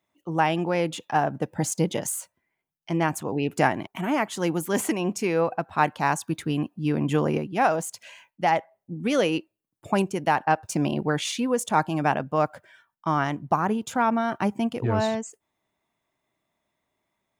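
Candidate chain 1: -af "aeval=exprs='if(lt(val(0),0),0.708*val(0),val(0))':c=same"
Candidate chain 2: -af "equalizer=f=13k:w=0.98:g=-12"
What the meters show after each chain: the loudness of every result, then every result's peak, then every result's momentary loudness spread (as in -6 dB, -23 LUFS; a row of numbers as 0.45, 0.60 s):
-27.0, -26.0 LUFS; -6.5, -6.5 dBFS; 6, 7 LU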